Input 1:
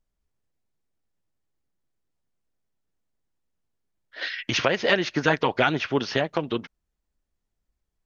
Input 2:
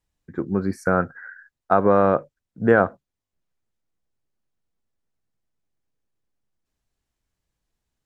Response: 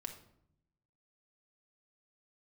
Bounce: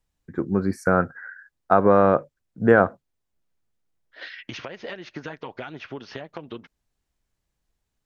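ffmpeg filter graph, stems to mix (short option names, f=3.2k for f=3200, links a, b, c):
-filter_complex "[0:a]acompressor=threshold=-26dB:ratio=10,highshelf=f=4.2k:g=-7.5,volume=-5dB[a];[1:a]volume=0.5dB[b];[a][b]amix=inputs=2:normalize=0"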